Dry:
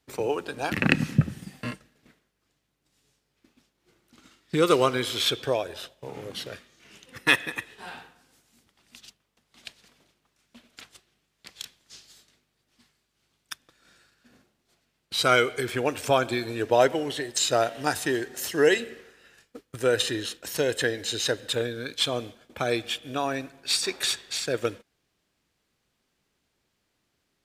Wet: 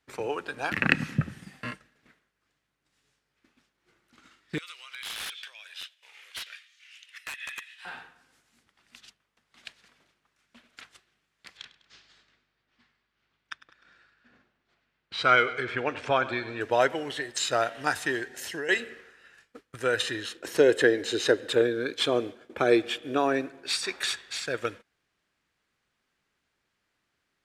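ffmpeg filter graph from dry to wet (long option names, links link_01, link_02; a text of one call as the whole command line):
ffmpeg -i in.wav -filter_complex "[0:a]asettb=1/sr,asplit=3[link_01][link_02][link_03];[link_01]atrim=end=4.584[link_04];[link_02]atrim=start=4.58:end=7.85,asetpts=PTS-STARTPTS,afade=type=in:duration=0.004:curve=qsin,afade=type=out:start_time=3.266:duration=0.004:curve=qsin,acompressor=threshold=-29dB:ratio=16:attack=3.2:release=140:knee=1:detection=peak,highpass=frequency=2600:width_type=q:width=1.6,aeval=exprs='(mod(20*val(0)+1,2)-1)/20':channel_layout=same[link_05];[link_03]atrim=start=7.846[link_06];[link_04][link_05]acrossfade=duration=0.004:curve1=hsin:curve2=qsin[link_07];[link_07][link_06]acrossfade=duration=0.004:curve1=qsin:curve2=hsin,asettb=1/sr,asplit=3[link_08][link_09][link_10];[link_08]atrim=end=11.574[link_11];[link_09]atrim=start=11.57:end=16.61,asetpts=PTS-STARTPTS,afade=type=in:duration=0.004:curve=qsin,afade=type=out:start_time=5.036:duration=0.004:curve=qsin,lowpass=4000,aecho=1:1:101|202|303|404|505:0.141|0.0805|0.0459|0.0262|0.0149,atrim=end_sample=222264[link_12];[link_10]atrim=start=16.606[link_13];[link_11][link_12]acrossfade=duration=0.004:curve1=hsin:curve2=qsin[link_14];[link_14][link_13]acrossfade=duration=0.004:curve1=qsin:curve2=hsin,asettb=1/sr,asplit=3[link_15][link_16][link_17];[link_15]atrim=end=18.264[link_18];[link_16]atrim=start=18.26:end=18.69,asetpts=PTS-STARTPTS,afade=type=in:duration=0.004:curve=qsin,afade=type=out:start_time=0.426:duration=0.004:curve=qsin,equalizer=frequency=1200:width_type=o:width=0.23:gain=-13,acompressor=threshold=-27dB:ratio=6:attack=3.2:release=140:knee=1:detection=peak[link_19];[link_17]atrim=start=18.686[link_20];[link_18][link_19]acrossfade=duration=0.004:curve1=hsin:curve2=qsin[link_21];[link_21][link_20]acrossfade=duration=0.004:curve1=qsin:curve2=hsin,asettb=1/sr,asplit=3[link_22][link_23][link_24];[link_22]atrim=end=20.354[link_25];[link_23]atrim=start=20.35:end=23.7,asetpts=PTS-STARTPTS,afade=type=in:duration=0.004:curve=qsin,afade=type=out:start_time=3.346:duration=0.004:curve=qsin,highpass=46,equalizer=frequency=370:width_type=o:width=1.3:gain=14[link_26];[link_24]atrim=start=23.696[link_27];[link_25][link_26]acrossfade=duration=0.004:curve1=hsin:curve2=qsin[link_28];[link_28][link_27]acrossfade=duration=0.004:curve1=qsin:curve2=hsin,lowpass=12000,equalizer=frequency=1600:width_type=o:width=1.7:gain=8.5,volume=-6dB" out.wav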